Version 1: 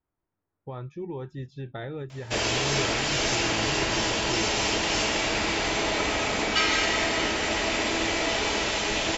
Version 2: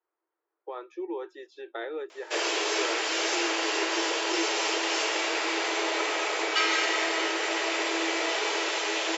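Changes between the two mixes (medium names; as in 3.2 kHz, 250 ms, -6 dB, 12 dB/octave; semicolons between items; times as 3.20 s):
speech +3.5 dB; master: add rippled Chebyshev high-pass 320 Hz, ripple 3 dB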